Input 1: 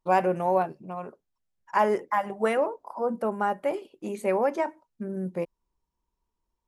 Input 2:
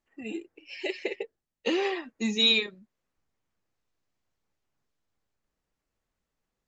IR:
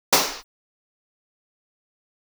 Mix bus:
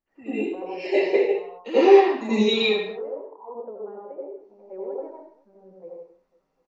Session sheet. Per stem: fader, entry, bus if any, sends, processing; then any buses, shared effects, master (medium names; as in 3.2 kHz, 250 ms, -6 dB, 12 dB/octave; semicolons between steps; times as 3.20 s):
-5.0 dB, 0.45 s, send -22.5 dB, echo send -16.5 dB, level-controlled noise filter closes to 340 Hz, open at -21.5 dBFS; peaking EQ 480 Hz -3.5 dB 1.3 oct; auto-wah 410–1600 Hz, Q 3.8, down, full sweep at -26.5 dBFS
-5.0 dB, 0.00 s, muted 3.03–4.31 s, send -8.5 dB, no echo send, peak limiter -17.5 dBFS, peak gain reduction 6.5 dB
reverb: on, pre-delay 77 ms
echo: feedback delay 250 ms, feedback 44%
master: treble shelf 3 kHz -10 dB